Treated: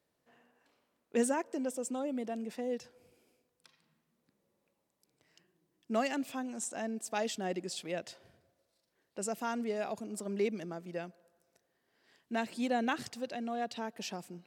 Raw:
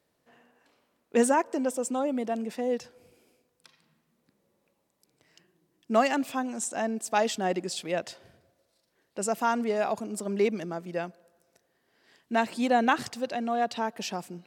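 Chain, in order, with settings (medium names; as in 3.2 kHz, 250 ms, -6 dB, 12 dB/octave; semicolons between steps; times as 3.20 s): dynamic bell 1 kHz, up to -6 dB, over -39 dBFS, Q 1.1; trim -6 dB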